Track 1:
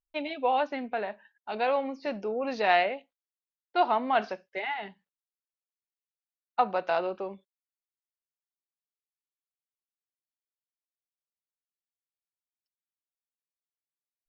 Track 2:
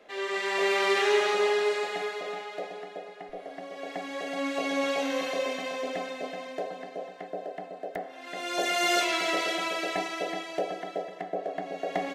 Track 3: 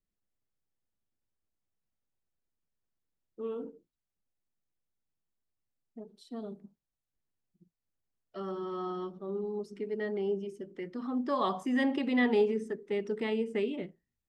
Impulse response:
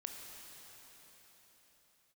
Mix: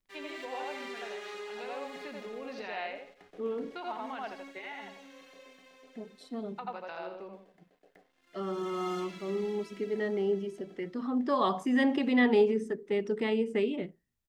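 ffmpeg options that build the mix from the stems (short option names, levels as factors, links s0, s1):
-filter_complex "[0:a]volume=0.447,asplit=2[s0][s1];[s1]volume=0.398[s2];[1:a]aeval=exprs='sgn(val(0))*max(abs(val(0))-0.00398,0)':c=same,volume=0.376,afade=t=out:st=3.87:d=0.75:silence=0.251189[s3];[2:a]volume=1.33[s4];[s0][s3]amix=inputs=2:normalize=0,equalizer=f=670:w=2.6:g=-10,acompressor=threshold=0.0112:ratio=5,volume=1[s5];[s2]aecho=0:1:83|166|249|332:1|0.31|0.0961|0.0298[s6];[s4][s5][s6]amix=inputs=3:normalize=0"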